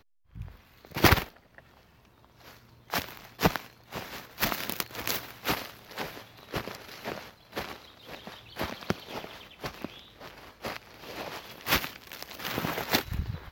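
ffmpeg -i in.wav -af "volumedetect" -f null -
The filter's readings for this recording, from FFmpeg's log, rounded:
mean_volume: -34.4 dB
max_volume: -2.4 dB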